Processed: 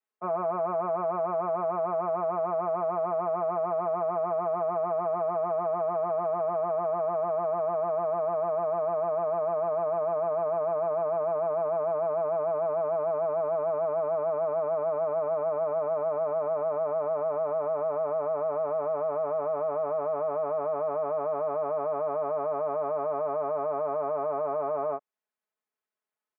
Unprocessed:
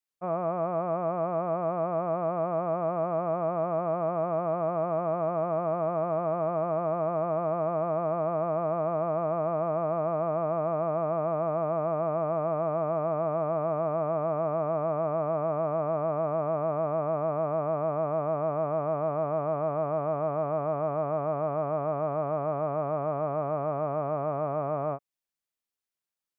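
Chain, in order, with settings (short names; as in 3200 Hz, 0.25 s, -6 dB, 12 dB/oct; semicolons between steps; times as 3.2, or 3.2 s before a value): three-band isolator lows -21 dB, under 250 Hz, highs -16 dB, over 2100 Hz; comb 4.7 ms, depth 99%; limiter -24.5 dBFS, peak gain reduction 9 dB; gain +3 dB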